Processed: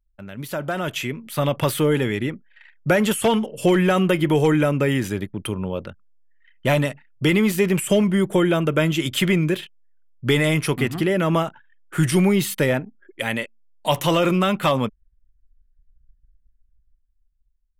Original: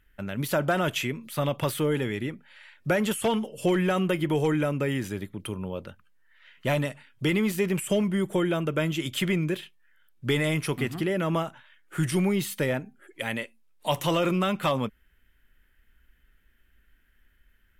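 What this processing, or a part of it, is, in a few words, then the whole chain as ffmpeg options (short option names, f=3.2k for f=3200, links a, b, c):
voice memo with heavy noise removal: -af "anlmdn=0.0158,dynaudnorm=f=110:g=21:m=12dB,volume=-3.5dB"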